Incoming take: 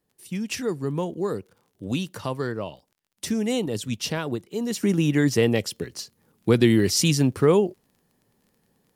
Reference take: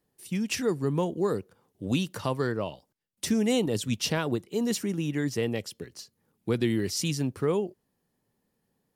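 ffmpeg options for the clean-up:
-af "adeclick=t=4,asetnsamples=n=441:p=0,asendcmd='4.83 volume volume -8.5dB',volume=1"

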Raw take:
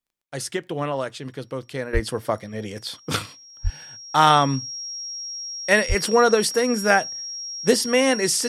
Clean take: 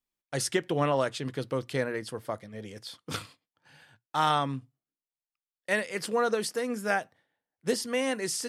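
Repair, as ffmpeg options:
-filter_complex "[0:a]adeclick=t=4,bandreject=f=5600:w=30,asplit=3[s0][s1][s2];[s0]afade=t=out:st=1.93:d=0.02[s3];[s1]highpass=f=140:w=0.5412,highpass=f=140:w=1.3066,afade=t=in:st=1.93:d=0.02,afade=t=out:st=2.05:d=0.02[s4];[s2]afade=t=in:st=2.05:d=0.02[s5];[s3][s4][s5]amix=inputs=3:normalize=0,asplit=3[s6][s7][s8];[s6]afade=t=out:st=3.63:d=0.02[s9];[s7]highpass=f=140:w=0.5412,highpass=f=140:w=1.3066,afade=t=in:st=3.63:d=0.02,afade=t=out:st=3.75:d=0.02[s10];[s8]afade=t=in:st=3.75:d=0.02[s11];[s9][s10][s11]amix=inputs=3:normalize=0,asplit=3[s12][s13][s14];[s12]afade=t=out:st=5.88:d=0.02[s15];[s13]highpass=f=140:w=0.5412,highpass=f=140:w=1.3066,afade=t=in:st=5.88:d=0.02,afade=t=out:st=6:d=0.02[s16];[s14]afade=t=in:st=6:d=0.02[s17];[s15][s16][s17]amix=inputs=3:normalize=0,asetnsamples=n=441:p=0,asendcmd='1.93 volume volume -10dB',volume=1"

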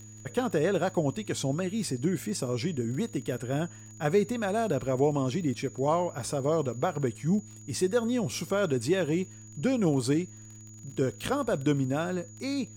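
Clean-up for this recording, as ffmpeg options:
-af "adeclick=t=4,bandreject=f=108.2:t=h:w=4,bandreject=f=216.4:t=h:w=4,bandreject=f=324.6:t=h:w=4,bandreject=f=6800:w=30,agate=range=0.0891:threshold=0.0112"

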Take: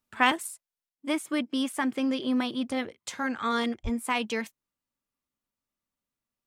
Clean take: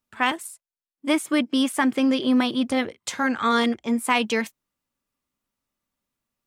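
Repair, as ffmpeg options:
-filter_complex "[0:a]asplit=3[s0][s1][s2];[s0]afade=t=out:st=3.83:d=0.02[s3];[s1]highpass=f=140:w=0.5412,highpass=f=140:w=1.3066,afade=t=in:st=3.83:d=0.02,afade=t=out:st=3.95:d=0.02[s4];[s2]afade=t=in:st=3.95:d=0.02[s5];[s3][s4][s5]amix=inputs=3:normalize=0,asetnsamples=n=441:p=0,asendcmd='0.89 volume volume 7dB',volume=1"

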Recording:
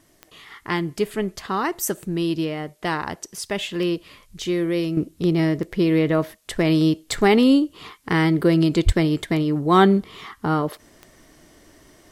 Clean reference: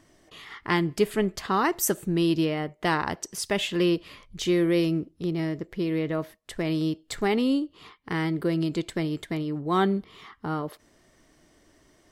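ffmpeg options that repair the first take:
-filter_complex "[0:a]adeclick=t=4,asplit=3[s0][s1][s2];[s0]afade=t=out:st=8.85:d=0.02[s3];[s1]highpass=f=140:w=0.5412,highpass=f=140:w=1.3066,afade=t=in:st=8.85:d=0.02,afade=t=out:st=8.97:d=0.02[s4];[s2]afade=t=in:st=8.97:d=0.02[s5];[s3][s4][s5]amix=inputs=3:normalize=0,agate=range=0.0891:threshold=0.00562,asetnsamples=n=441:p=0,asendcmd='4.97 volume volume -8.5dB',volume=1"

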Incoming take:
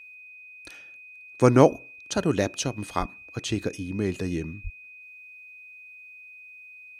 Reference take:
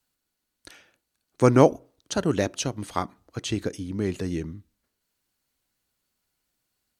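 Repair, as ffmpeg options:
-filter_complex "[0:a]bandreject=f=2500:w=30,asplit=3[s0][s1][s2];[s0]afade=t=out:st=2.99:d=0.02[s3];[s1]highpass=f=140:w=0.5412,highpass=f=140:w=1.3066,afade=t=in:st=2.99:d=0.02,afade=t=out:st=3.11:d=0.02[s4];[s2]afade=t=in:st=3.11:d=0.02[s5];[s3][s4][s5]amix=inputs=3:normalize=0,asplit=3[s6][s7][s8];[s6]afade=t=out:st=4.63:d=0.02[s9];[s7]highpass=f=140:w=0.5412,highpass=f=140:w=1.3066,afade=t=in:st=4.63:d=0.02,afade=t=out:st=4.75:d=0.02[s10];[s8]afade=t=in:st=4.75:d=0.02[s11];[s9][s10][s11]amix=inputs=3:normalize=0"

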